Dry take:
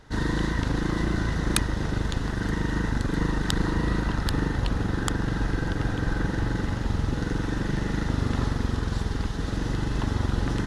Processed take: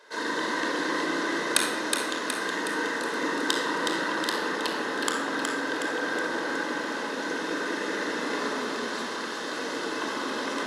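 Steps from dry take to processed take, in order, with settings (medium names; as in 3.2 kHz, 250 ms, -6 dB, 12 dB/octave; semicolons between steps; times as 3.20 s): Bessel high-pass 480 Hz, order 6; two-band feedback delay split 1 kHz, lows 197 ms, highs 368 ms, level -4.5 dB; simulated room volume 3900 m³, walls furnished, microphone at 5.2 m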